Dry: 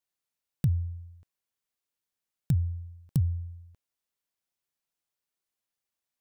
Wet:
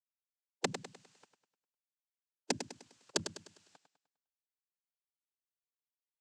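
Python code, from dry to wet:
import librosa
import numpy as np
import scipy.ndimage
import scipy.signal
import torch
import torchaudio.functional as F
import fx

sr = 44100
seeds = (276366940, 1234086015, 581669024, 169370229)

p1 = fx.spec_gate(x, sr, threshold_db=-25, keep='weak')
p2 = fx.noise_vocoder(p1, sr, seeds[0], bands=8)
p3 = p2 + fx.echo_feedback(p2, sr, ms=101, feedback_pct=41, wet_db=-9.0, dry=0)
y = p3 * 10.0 ** (18.0 / 20.0)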